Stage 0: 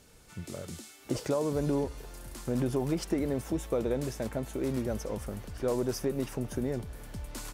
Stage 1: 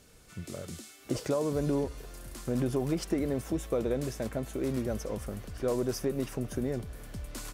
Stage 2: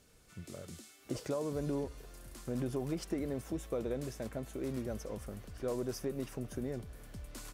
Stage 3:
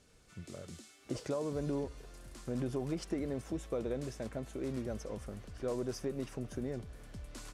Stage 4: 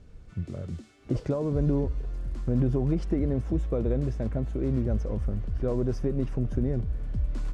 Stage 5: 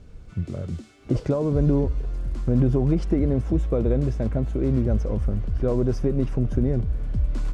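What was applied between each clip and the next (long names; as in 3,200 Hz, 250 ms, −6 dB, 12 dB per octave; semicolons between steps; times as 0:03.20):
notch filter 880 Hz, Q 12
surface crackle 16 per second −51 dBFS; level −6.5 dB
low-pass filter 9,000 Hz 12 dB per octave
RIAA equalisation playback; level +3.5 dB
notch filter 1,800 Hz, Q 23; level +5 dB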